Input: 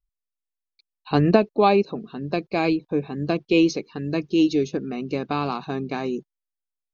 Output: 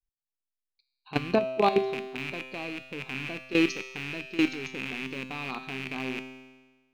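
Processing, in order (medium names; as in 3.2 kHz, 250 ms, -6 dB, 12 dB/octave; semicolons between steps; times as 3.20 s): rattle on loud lows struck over -34 dBFS, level -12 dBFS; level held to a coarse grid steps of 16 dB; feedback comb 130 Hz, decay 1.3 s, harmonics all, mix 80%; trim +8.5 dB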